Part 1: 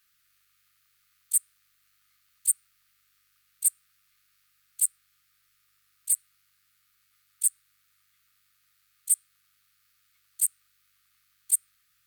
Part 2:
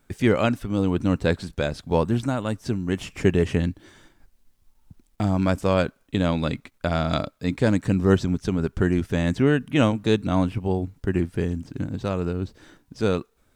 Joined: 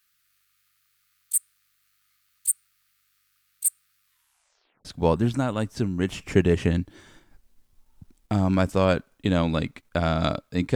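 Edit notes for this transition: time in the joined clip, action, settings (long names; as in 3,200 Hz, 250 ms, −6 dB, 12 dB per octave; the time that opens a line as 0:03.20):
part 1
0:04.03: tape stop 0.82 s
0:04.85: continue with part 2 from 0:01.74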